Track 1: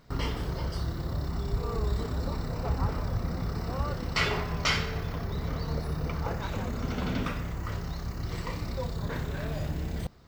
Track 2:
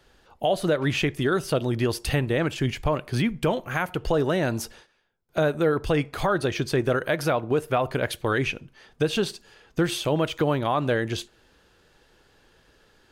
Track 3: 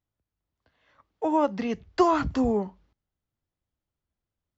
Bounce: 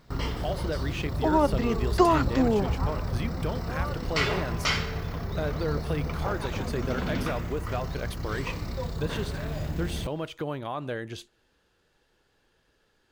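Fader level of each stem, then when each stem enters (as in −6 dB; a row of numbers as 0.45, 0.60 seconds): +0.5, −9.5, +0.5 decibels; 0.00, 0.00, 0.00 seconds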